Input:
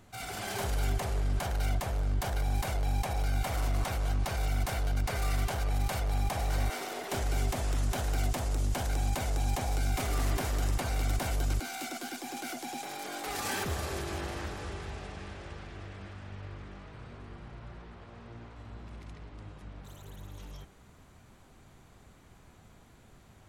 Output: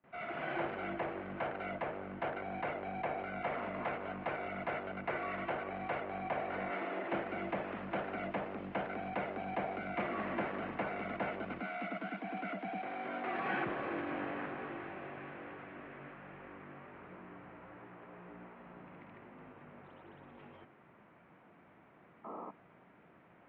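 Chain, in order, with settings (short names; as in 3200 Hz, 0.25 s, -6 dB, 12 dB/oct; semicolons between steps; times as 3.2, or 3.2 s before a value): painted sound noise, 22.24–22.51, 220–1400 Hz -45 dBFS; mistuned SSB -54 Hz 220–2600 Hz; gate with hold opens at -54 dBFS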